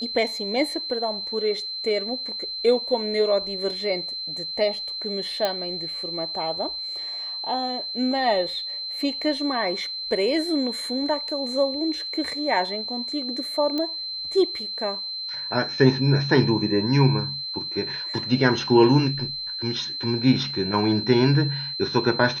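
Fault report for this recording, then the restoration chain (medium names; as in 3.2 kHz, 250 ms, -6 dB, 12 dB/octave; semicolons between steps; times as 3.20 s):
whine 4.1 kHz -29 dBFS
5.45 s: pop -10 dBFS
13.78 s: pop -15 dBFS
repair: de-click; band-stop 4.1 kHz, Q 30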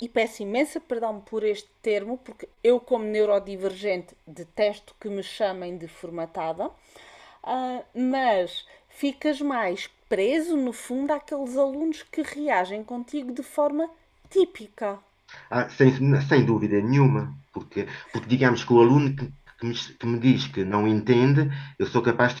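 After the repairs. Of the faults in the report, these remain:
nothing left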